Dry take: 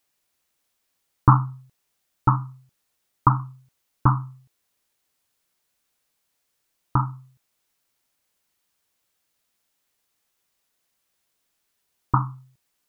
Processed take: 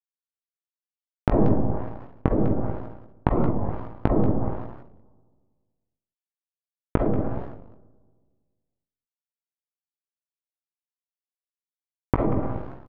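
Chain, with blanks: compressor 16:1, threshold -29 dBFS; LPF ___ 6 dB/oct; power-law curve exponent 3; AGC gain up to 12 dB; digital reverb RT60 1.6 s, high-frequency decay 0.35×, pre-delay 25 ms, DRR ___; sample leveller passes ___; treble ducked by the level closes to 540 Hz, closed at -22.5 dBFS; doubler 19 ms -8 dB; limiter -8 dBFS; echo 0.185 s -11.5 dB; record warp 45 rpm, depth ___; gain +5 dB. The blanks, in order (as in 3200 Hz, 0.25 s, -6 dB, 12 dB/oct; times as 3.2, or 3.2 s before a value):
1400 Hz, 0 dB, 2, 250 cents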